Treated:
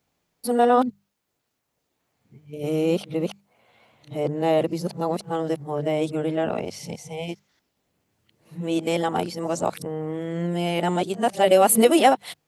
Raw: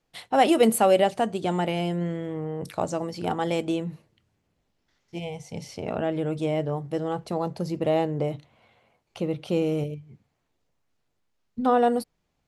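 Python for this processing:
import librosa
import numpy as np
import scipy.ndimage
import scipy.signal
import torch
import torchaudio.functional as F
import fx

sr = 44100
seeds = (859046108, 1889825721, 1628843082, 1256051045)

y = x[::-1].copy()
y = fx.highpass(y, sr, hz=120.0, slope=6)
y = fx.high_shelf(y, sr, hz=10000.0, db=11.0)
y = fx.hum_notches(y, sr, base_hz=50, count=4)
y = F.gain(torch.from_numpy(y), 3.0).numpy()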